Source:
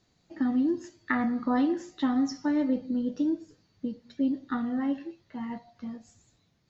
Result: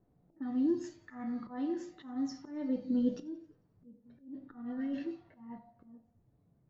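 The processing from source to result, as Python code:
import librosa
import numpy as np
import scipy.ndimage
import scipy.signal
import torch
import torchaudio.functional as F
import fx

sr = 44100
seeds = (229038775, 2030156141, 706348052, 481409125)

y = fx.over_compress(x, sr, threshold_db=-32.0, ratio=-1.0, at=(4.05, 5.04), fade=0.02)
y = fx.auto_swell(y, sr, attack_ms=705.0)
y = fx.spec_repair(y, sr, seeds[0], start_s=4.74, length_s=0.57, low_hz=650.0, high_hz=1500.0, source='both')
y = fx.room_shoebox(y, sr, seeds[1], volume_m3=140.0, walls='furnished', distance_m=0.37)
y = fx.hpss(y, sr, part='percussive', gain_db=-4)
y = fx.env_lowpass(y, sr, base_hz=660.0, full_db=-33.5)
y = fx.echo_thinned(y, sr, ms=89, feedback_pct=55, hz=420.0, wet_db=-22)
y = y * 10.0 ** (2.0 / 20.0)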